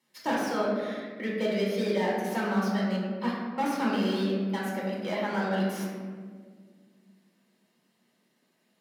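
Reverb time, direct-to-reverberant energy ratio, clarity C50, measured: 1.7 s, -5.0 dB, 0.0 dB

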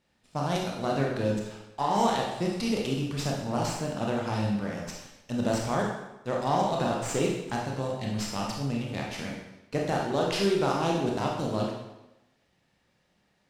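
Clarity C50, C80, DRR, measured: 2.5 dB, 5.0 dB, -2.0 dB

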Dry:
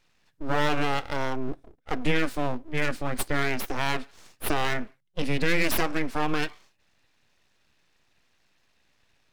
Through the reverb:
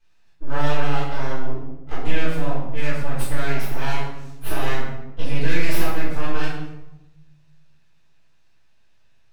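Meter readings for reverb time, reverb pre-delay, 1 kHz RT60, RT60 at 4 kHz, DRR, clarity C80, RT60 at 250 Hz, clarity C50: 0.95 s, 3 ms, 0.85 s, 0.65 s, -13.0 dB, 4.5 dB, 1.5 s, 1.0 dB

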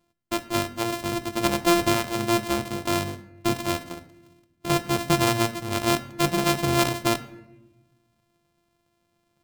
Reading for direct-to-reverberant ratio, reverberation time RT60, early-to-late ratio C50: 12.0 dB, 1.0 s, 15.0 dB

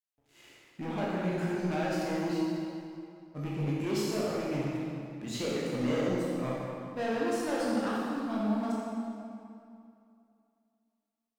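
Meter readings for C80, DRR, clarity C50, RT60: -1.0 dB, -6.5 dB, -3.0 dB, 2.6 s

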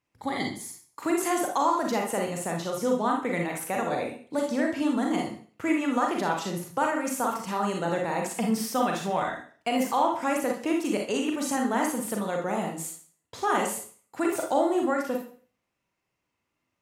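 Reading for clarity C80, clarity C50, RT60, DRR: 10.5 dB, 4.0 dB, 0.45 s, 0.5 dB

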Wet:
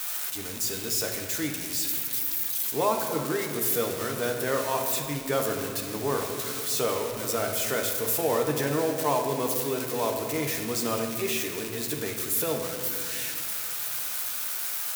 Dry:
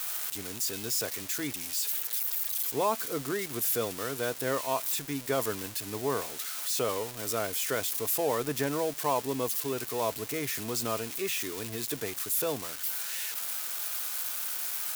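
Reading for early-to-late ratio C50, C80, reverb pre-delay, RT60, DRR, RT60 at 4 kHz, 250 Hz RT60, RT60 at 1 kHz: 5.0 dB, 6.0 dB, 7 ms, 2.5 s, 2.0 dB, 1.3 s, 3.3 s, 2.1 s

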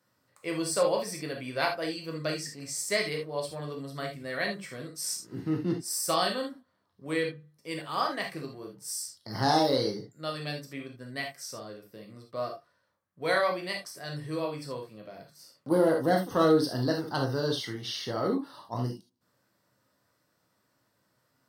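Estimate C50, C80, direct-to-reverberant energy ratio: 8.0 dB, 16.5 dB, 1.0 dB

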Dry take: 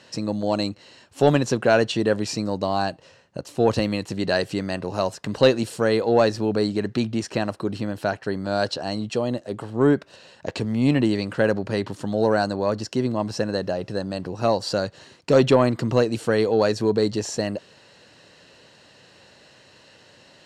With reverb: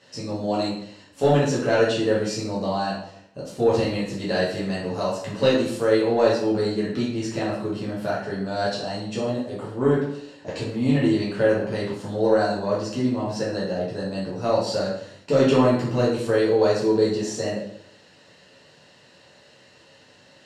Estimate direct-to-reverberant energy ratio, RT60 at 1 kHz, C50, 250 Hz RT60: -7.5 dB, 0.65 s, 2.5 dB, 0.70 s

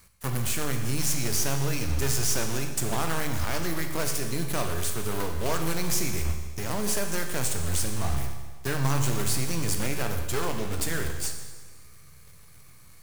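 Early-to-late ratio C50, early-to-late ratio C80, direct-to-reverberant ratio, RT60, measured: 6.5 dB, 8.0 dB, 4.5 dB, 1.4 s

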